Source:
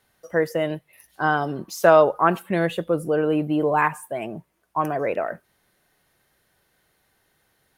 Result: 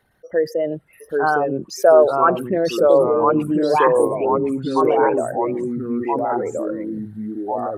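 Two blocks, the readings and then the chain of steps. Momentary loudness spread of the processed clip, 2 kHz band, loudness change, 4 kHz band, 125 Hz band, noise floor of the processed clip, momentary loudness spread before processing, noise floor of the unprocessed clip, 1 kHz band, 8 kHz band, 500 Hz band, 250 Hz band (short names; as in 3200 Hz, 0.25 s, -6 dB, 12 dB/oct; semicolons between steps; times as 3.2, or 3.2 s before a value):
12 LU, -0.5 dB, +3.5 dB, +2.5 dB, 0.0 dB, -52 dBFS, 15 LU, -68 dBFS, +4.5 dB, n/a, +6.5 dB, +5.5 dB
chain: formant sharpening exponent 2; echoes that change speed 0.741 s, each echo -2 st, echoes 3; gain +2.5 dB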